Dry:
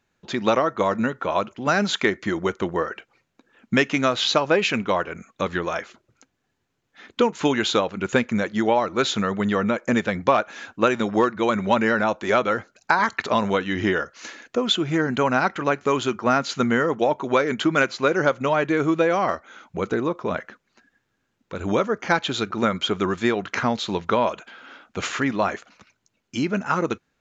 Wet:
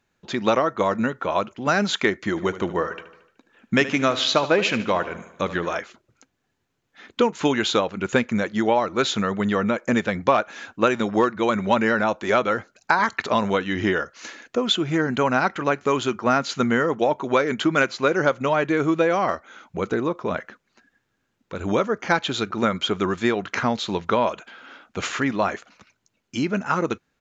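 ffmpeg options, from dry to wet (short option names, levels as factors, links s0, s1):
-filter_complex "[0:a]asplit=3[s0][s1][s2];[s0]afade=t=out:st=2.36:d=0.02[s3];[s1]aecho=1:1:75|150|225|300|375|450:0.188|0.105|0.0591|0.0331|0.0185|0.0104,afade=t=in:st=2.36:d=0.02,afade=t=out:st=5.77:d=0.02[s4];[s2]afade=t=in:st=5.77:d=0.02[s5];[s3][s4][s5]amix=inputs=3:normalize=0"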